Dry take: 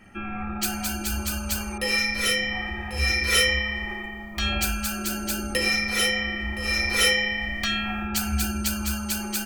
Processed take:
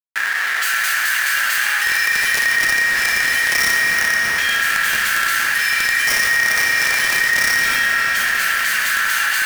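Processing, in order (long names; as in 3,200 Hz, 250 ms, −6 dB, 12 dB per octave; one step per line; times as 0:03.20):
high-shelf EQ 7,900 Hz +11 dB
automatic gain control gain up to 3 dB
brickwall limiter −13 dBFS, peak gain reduction 9.5 dB
flanger 0.26 Hz, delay 5.1 ms, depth 2.3 ms, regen −8%
comparator with hysteresis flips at −34.5 dBFS
high-pass with resonance 1,700 Hz, resonance Q 7.9
wrap-around overflow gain 13.5 dB
convolution reverb RT60 5.0 s, pre-delay 27 ms, DRR −2 dB
envelope flattener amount 70%
level −2.5 dB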